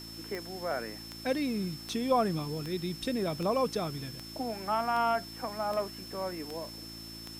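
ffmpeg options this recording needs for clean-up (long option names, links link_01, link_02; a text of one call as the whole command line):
ffmpeg -i in.wav -af "adeclick=threshold=4,bandreject=frequency=55.8:width_type=h:width=4,bandreject=frequency=111.6:width_type=h:width=4,bandreject=frequency=167.4:width_type=h:width=4,bandreject=frequency=223.2:width_type=h:width=4,bandreject=frequency=279:width_type=h:width=4,bandreject=frequency=334.8:width_type=h:width=4,bandreject=frequency=5300:width=30,afwtdn=0.0025" out.wav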